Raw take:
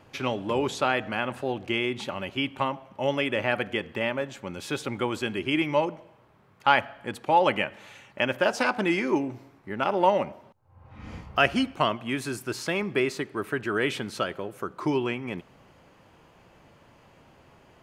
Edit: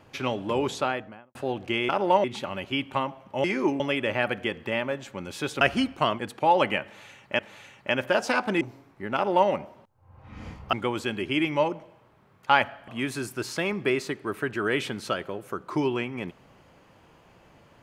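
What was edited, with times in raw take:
0.7–1.35 studio fade out
4.9–7.05 swap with 11.4–11.98
7.7–8.25 loop, 2 plays
8.92–9.28 move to 3.09
9.82–10.17 copy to 1.89

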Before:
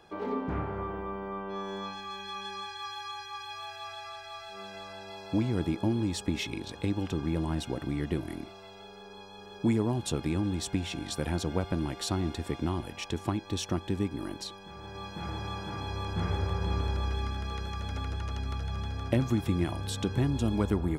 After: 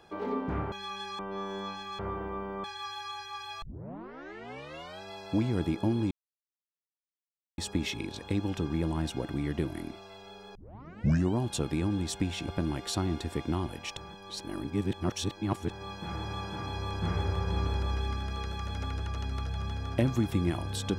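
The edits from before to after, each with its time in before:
0.72–1.37 swap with 2.17–2.64
3.62 tape start 1.40 s
6.11 insert silence 1.47 s
9.08 tape start 0.83 s
11.01–11.62 cut
13.11–14.84 reverse

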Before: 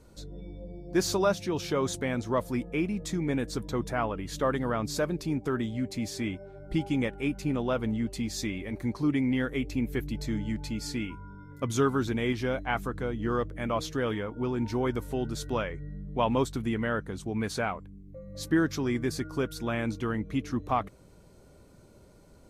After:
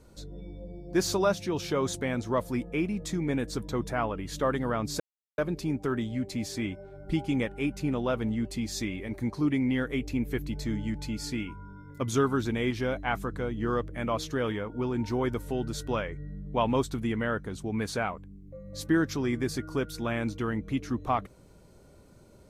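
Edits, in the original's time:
5 insert silence 0.38 s

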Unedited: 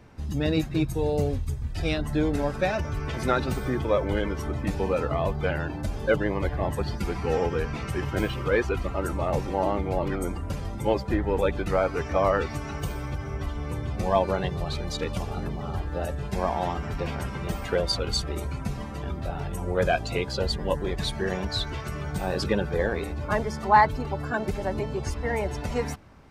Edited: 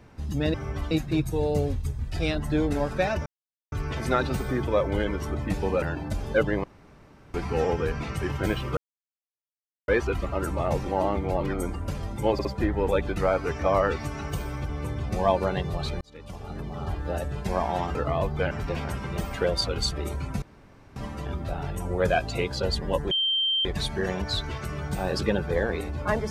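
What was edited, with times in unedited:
2.89 insert silence 0.46 s
4.99–5.55 move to 16.82
6.37–7.07 room tone
8.5 insert silence 1.11 s
10.95 stutter 0.06 s, 3 plays
13.19–13.56 move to 0.54
14.88–15.81 fade in
18.73 insert room tone 0.54 s
20.88 add tone 3140 Hz -21.5 dBFS 0.54 s

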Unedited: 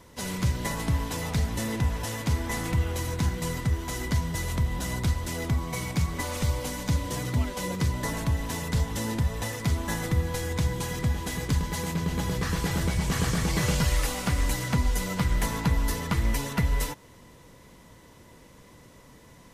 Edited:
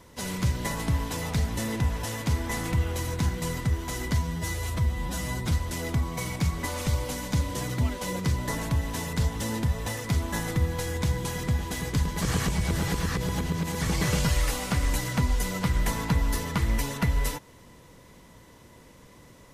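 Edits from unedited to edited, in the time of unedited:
4.18–5.07 stretch 1.5×
11.77–13.37 reverse

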